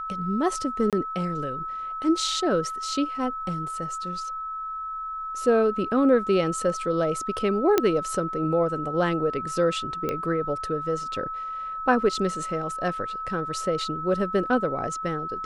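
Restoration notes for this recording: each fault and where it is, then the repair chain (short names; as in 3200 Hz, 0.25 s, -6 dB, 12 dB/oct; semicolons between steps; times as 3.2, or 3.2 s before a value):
tone 1300 Hz -30 dBFS
0.9–0.93 gap 27 ms
7.78 pop -6 dBFS
10.09 pop -14 dBFS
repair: de-click; notch 1300 Hz, Q 30; interpolate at 0.9, 27 ms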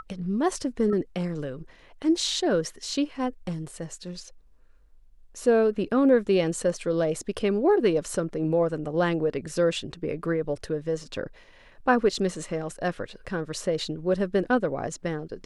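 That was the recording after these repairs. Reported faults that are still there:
none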